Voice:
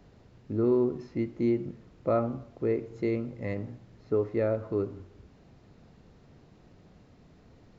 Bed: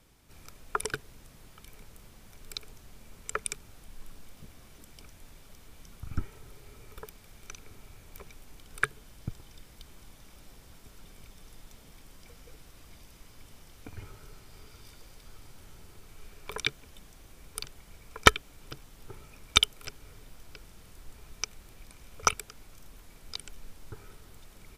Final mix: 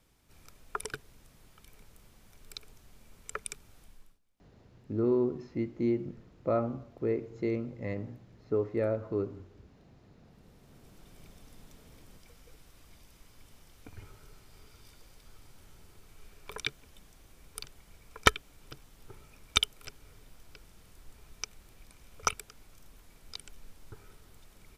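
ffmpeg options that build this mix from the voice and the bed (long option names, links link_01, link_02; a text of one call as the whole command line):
ffmpeg -i stem1.wav -i stem2.wav -filter_complex "[0:a]adelay=4400,volume=-2.5dB[link_01];[1:a]volume=19dB,afade=type=out:start_time=3.83:duration=0.36:silence=0.0668344,afade=type=in:start_time=10.24:duration=0.94:silence=0.0595662[link_02];[link_01][link_02]amix=inputs=2:normalize=0" out.wav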